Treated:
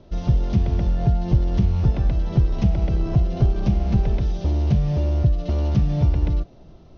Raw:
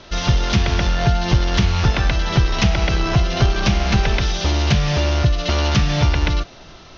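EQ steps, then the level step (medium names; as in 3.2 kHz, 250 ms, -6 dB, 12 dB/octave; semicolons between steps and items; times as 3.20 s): FFT filter 180 Hz 0 dB, 620 Hz -6 dB, 1.5 kHz -20 dB; -1.5 dB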